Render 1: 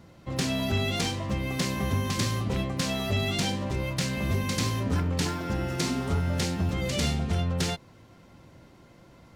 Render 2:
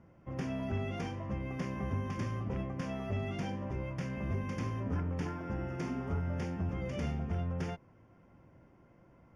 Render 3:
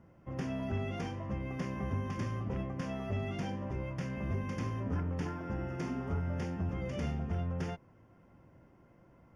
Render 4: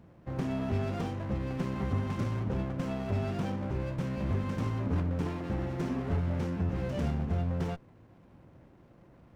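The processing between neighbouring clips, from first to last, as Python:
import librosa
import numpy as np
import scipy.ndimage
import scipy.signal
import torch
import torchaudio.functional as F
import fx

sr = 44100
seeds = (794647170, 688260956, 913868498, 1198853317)

y1 = scipy.signal.lfilter(np.full(11, 1.0 / 11), 1.0, x)
y1 = y1 * librosa.db_to_amplitude(-7.5)
y2 = fx.notch(y1, sr, hz=2300.0, q=24.0)
y3 = fx.running_max(y2, sr, window=17)
y3 = y3 * librosa.db_to_amplitude(4.5)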